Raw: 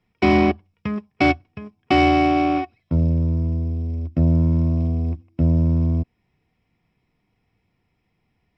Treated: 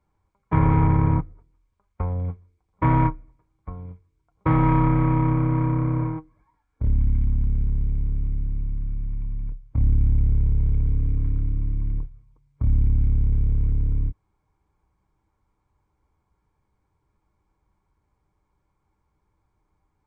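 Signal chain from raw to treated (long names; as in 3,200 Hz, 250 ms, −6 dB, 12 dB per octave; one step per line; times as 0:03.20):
wrong playback speed 78 rpm record played at 33 rpm
dynamic equaliser 320 Hz, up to −4 dB, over −27 dBFS, Q 0.71
level −1 dB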